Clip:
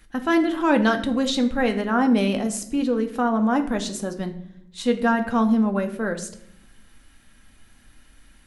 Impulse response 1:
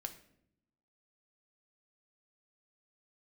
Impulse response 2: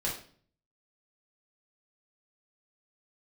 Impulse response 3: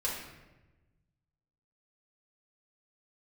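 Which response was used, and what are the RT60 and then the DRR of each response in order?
1; 0.70, 0.50, 1.1 seconds; 5.5, −4.5, −6.5 decibels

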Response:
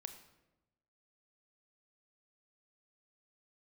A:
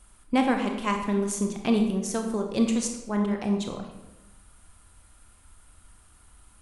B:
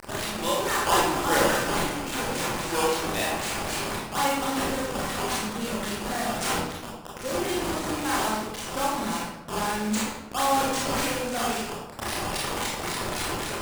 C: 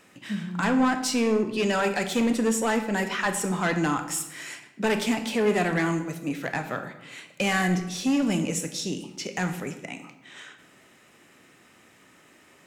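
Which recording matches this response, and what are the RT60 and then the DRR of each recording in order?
C; 1.0, 1.0, 1.0 seconds; 3.5, −6.0, 7.5 decibels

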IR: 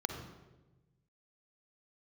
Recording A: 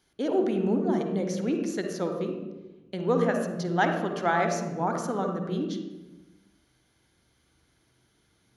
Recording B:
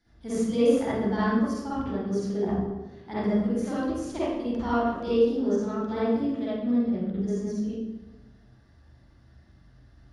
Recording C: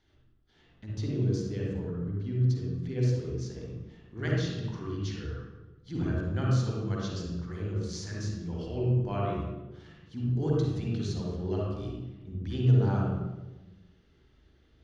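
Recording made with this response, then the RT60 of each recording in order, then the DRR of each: A; 1.1, 1.1, 1.1 seconds; 4.0, −12.5, −4.0 decibels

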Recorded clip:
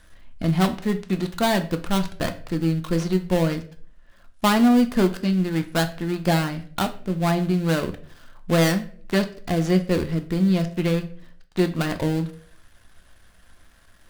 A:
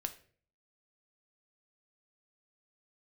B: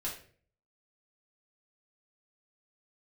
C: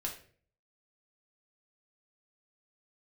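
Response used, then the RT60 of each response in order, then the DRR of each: A; 0.45, 0.45, 0.45 seconds; 7.0, −6.0, −1.0 decibels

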